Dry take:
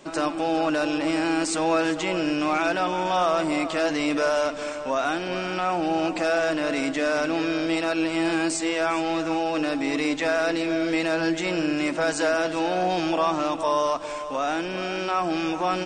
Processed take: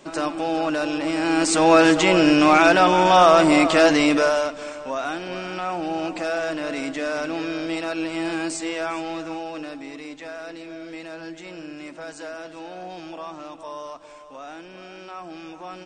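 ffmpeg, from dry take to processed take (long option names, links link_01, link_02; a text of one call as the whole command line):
ffmpeg -i in.wav -af "volume=9dB,afade=type=in:start_time=1.16:duration=0.67:silence=0.354813,afade=type=out:start_time=3.84:duration=0.69:silence=0.266073,afade=type=out:start_time=8.72:duration=1.26:silence=0.316228" out.wav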